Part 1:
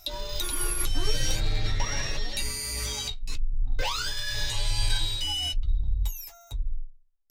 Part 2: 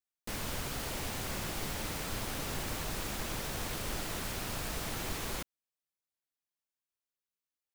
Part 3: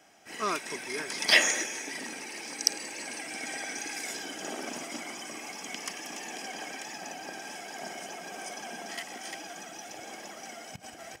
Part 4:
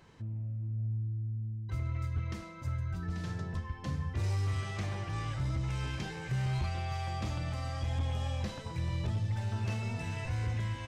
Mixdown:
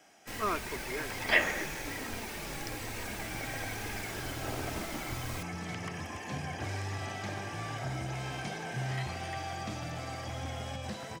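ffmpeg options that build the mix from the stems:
-filter_complex "[1:a]asplit=2[a][b];[b]adelay=3,afreqshift=-1.2[c];[a][c]amix=inputs=2:normalize=1,volume=-1.5dB[d];[2:a]acrossover=split=2700[e][f];[f]acompressor=threshold=-50dB:ratio=4:attack=1:release=60[g];[e][g]amix=inputs=2:normalize=0,volume=-1dB[h];[3:a]highpass=140,dynaudnorm=f=270:g=13:m=11.5dB,adelay=2450,volume=-11.5dB[i];[d][h][i]amix=inputs=3:normalize=0"

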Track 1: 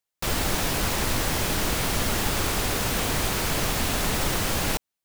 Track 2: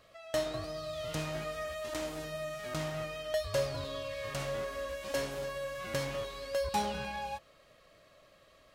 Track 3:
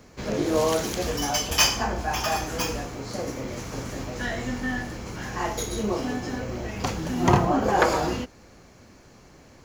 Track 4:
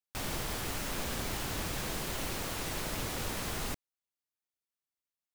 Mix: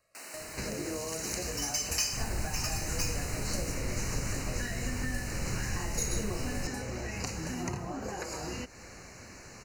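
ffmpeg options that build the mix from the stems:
-filter_complex "[0:a]bass=f=250:g=11,treble=f=4k:g=-7,adelay=1900,volume=-17dB[a];[1:a]tiltshelf=f=1.4k:g=4.5,crystalizer=i=2.5:c=0,volume=-17dB[b];[2:a]acompressor=threshold=-35dB:ratio=4,adelay=400,volume=1.5dB[c];[3:a]highpass=f=250:w=0.5412,highpass=f=250:w=1.3066,volume=-11dB[d];[a][b][c][d]amix=inputs=4:normalize=0,equalizer=f=250:t=o:w=1:g=-3,equalizer=f=2k:t=o:w=1:g=6,equalizer=f=8k:t=o:w=1:g=9,acrossover=split=420|3000[e][f][g];[f]acompressor=threshold=-41dB:ratio=6[h];[e][h][g]amix=inputs=3:normalize=0,asuperstop=centerf=3400:order=12:qfactor=3.9"

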